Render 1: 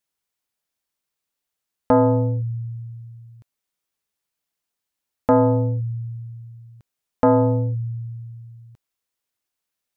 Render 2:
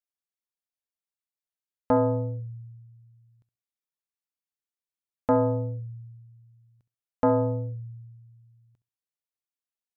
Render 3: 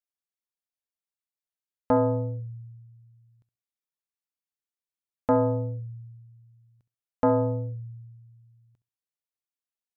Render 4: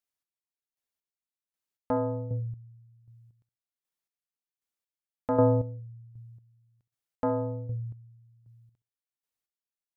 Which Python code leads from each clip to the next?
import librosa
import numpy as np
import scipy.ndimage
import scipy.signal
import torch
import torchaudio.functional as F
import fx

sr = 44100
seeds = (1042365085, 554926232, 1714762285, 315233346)

y1 = fx.room_flutter(x, sr, wall_m=11.5, rt60_s=0.24)
y1 = fx.upward_expand(y1, sr, threshold_db=-34.0, expansion=1.5)
y1 = F.gain(torch.from_numpy(y1), -5.5).numpy()
y2 = y1
y3 = fx.chopper(y2, sr, hz=1.3, depth_pct=65, duty_pct=30)
y3 = F.gain(torch.from_numpy(y3), 3.0).numpy()